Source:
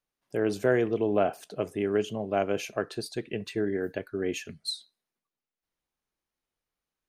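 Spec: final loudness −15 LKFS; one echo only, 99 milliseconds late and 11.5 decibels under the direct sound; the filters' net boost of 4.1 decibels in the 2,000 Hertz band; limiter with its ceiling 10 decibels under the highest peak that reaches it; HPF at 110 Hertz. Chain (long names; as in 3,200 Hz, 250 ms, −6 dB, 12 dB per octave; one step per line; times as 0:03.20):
high-pass filter 110 Hz
parametric band 2,000 Hz +5.5 dB
brickwall limiter −19.5 dBFS
single-tap delay 99 ms −11.5 dB
level +17 dB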